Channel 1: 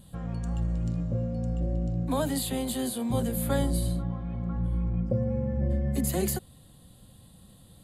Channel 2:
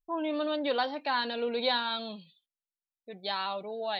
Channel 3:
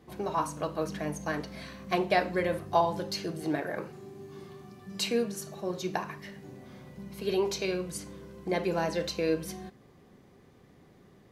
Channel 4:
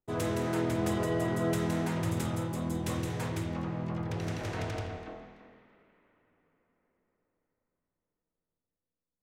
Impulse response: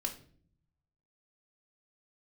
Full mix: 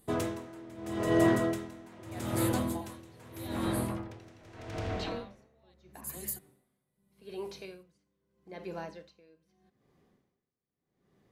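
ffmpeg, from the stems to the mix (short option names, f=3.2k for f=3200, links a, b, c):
-filter_complex "[0:a]aemphasis=mode=production:type=75fm,volume=-18dB[a];[1:a]adelay=1750,volume=-12dB[b];[2:a]acrossover=split=5300[c][d];[d]acompressor=threshold=-57dB:ratio=4:attack=1:release=60[e];[c][e]amix=inputs=2:normalize=0,volume=-10dB[f];[3:a]volume=1.5dB,asplit=2[g][h];[h]volume=-4dB[i];[4:a]atrim=start_sample=2205[j];[i][j]afir=irnorm=-1:irlink=0[k];[a][b][f][g][k]amix=inputs=5:normalize=0,bandreject=f=50:t=h:w=6,bandreject=f=100:t=h:w=6,aeval=exprs='val(0)*pow(10,-25*(0.5-0.5*cos(2*PI*0.8*n/s))/20)':c=same"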